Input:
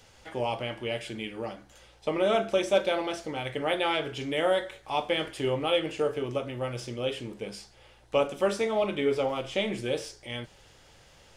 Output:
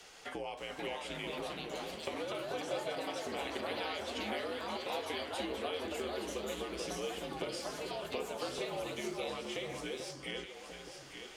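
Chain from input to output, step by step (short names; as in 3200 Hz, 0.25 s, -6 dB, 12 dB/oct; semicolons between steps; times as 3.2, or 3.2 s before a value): HPF 560 Hz 6 dB/oct; compressor 6:1, threshold -43 dBFS, peak gain reduction 20.5 dB; on a send: echo with dull and thin repeats by turns 0.437 s, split 1400 Hz, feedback 67%, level -4 dB; on the sum: frequency shift -64 Hz; echoes that change speed 0.574 s, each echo +3 st, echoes 2; gain +3.5 dB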